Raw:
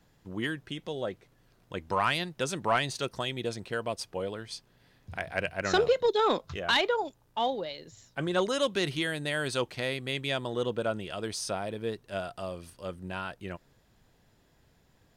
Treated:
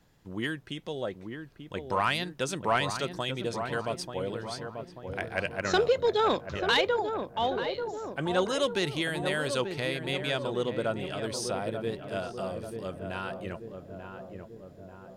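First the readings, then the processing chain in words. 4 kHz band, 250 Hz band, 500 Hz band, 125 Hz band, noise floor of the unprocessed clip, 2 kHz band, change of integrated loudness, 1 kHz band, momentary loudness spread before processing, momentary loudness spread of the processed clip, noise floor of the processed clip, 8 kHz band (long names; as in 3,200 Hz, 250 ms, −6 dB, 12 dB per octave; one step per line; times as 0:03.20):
0.0 dB, +1.5 dB, +1.0 dB, +1.5 dB, −66 dBFS, +0.5 dB, +0.5 dB, +0.5 dB, 15 LU, 16 LU, −50 dBFS, 0.0 dB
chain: feedback echo with a low-pass in the loop 888 ms, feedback 63%, low-pass 1,100 Hz, level −6 dB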